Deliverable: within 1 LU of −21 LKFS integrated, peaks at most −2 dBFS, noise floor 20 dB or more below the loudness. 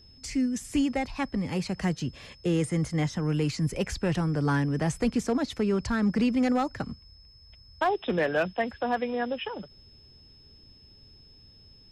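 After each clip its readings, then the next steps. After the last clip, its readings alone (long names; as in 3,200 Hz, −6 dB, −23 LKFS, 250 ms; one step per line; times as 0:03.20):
share of clipped samples 0.4%; peaks flattened at −18.0 dBFS; interfering tone 5,200 Hz; level of the tone −54 dBFS; integrated loudness −28.5 LKFS; sample peak −18.0 dBFS; target loudness −21.0 LKFS
→ clipped peaks rebuilt −18 dBFS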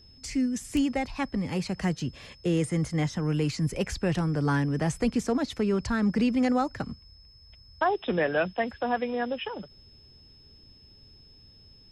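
share of clipped samples 0.0%; interfering tone 5,200 Hz; level of the tone −54 dBFS
→ notch filter 5,200 Hz, Q 30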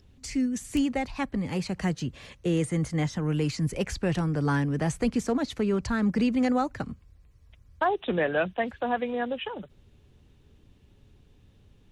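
interfering tone none found; integrated loudness −28.5 LKFS; sample peak −10.5 dBFS; target loudness −21.0 LKFS
→ level +7.5 dB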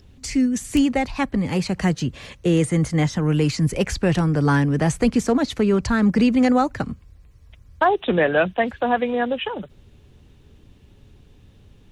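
integrated loudness −21.0 LKFS; sample peak −3.0 dBFS; background noise floor −52 dBFS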